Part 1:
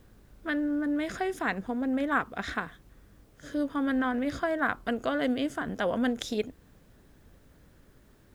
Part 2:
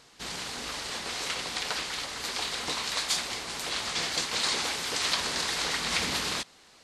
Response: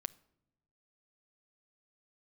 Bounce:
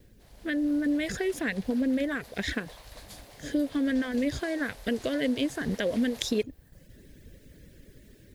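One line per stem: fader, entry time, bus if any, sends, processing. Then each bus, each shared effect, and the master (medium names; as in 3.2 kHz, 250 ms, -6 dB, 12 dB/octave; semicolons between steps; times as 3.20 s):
+0.5 dB, 0.00 s, no send, reverb removal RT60 0.68 s; gate with hold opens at -52 dBFS; compression, threshold -31 dBFS, peak gain reduction 9 dB
+1.5 dB, 0.00 s, no send, ladder high-pass 630 Hz, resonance 55%; high-order bell 3.9 kHz -15 dB 2.6 oct; auto duck -6 dB, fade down 0.25 s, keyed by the first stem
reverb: none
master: high-order bell 1 kHz -15.5 dB 1.2 oct; level rider gain up to 7.5 dB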